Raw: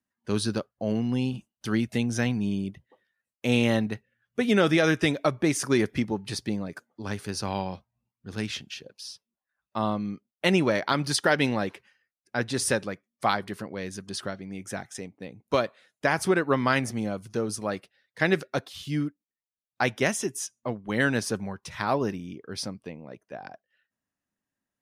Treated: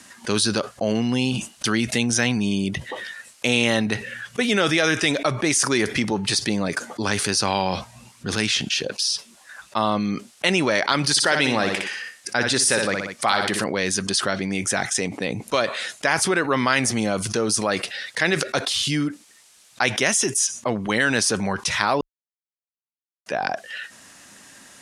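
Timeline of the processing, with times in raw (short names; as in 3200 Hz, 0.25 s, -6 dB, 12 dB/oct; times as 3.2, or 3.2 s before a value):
11.1–13.64 feedback echo 61 ms, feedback 27%, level -9.5 dB
22.01–23.26 mute
whole clip: LPF 9700 Hz 24 dB/oct; tilt +2.5 dB/oct; fast leveller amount 70%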